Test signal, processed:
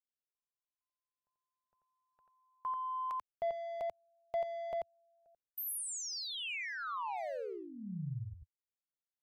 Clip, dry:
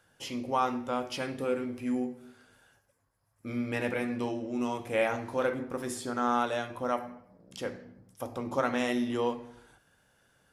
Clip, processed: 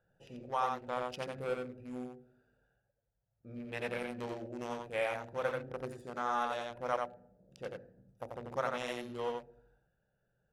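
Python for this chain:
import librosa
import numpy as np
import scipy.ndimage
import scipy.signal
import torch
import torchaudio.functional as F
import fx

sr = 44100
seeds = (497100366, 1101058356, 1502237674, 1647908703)

y = fx.wiener(x, sr, points=41)
y = fx.peak_eq(y, sr, hz=91.0, db=-14.5, octaves=0.34)
y = y + 10.0 ** (-3.5 / 20.0) * np.pad(y, (int(88 * sr / 1000.0), 0))[:len(y)]
y = fx.rider(y, sr, range_db=3, speed_s=0.5)
y = fx.peak_eq(y, sr, hz=280.0, db=-14.0, octaves=0.77)
y = y * librosa.db_to_amplitude(-2.5)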